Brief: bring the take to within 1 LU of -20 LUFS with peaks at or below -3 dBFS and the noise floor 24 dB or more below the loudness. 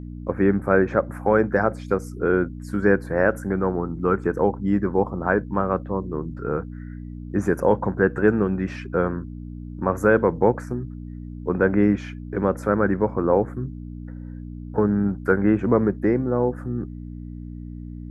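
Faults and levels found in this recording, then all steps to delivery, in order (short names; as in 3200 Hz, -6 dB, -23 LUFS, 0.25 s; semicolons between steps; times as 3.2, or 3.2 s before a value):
hum 60 Hz; harmonics up to 300 Hz; hum level -32 dBFS; loudness -22.5 LUFS; peak -4.0 dBFS; loudness target -20.0 LUFS
-> de-hum 60 Hz, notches 5; gain +2.5 dB; limiter -3 dBFS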